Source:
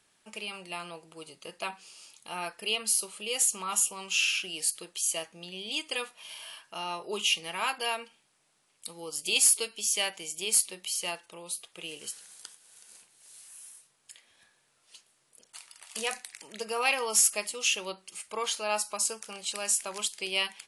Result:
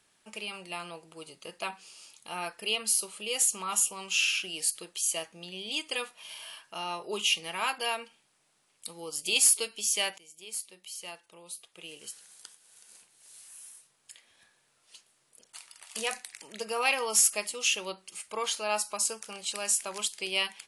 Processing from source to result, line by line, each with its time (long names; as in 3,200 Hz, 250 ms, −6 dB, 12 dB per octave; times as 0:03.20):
0:10.18–0:13.50: fade in, from −17 dB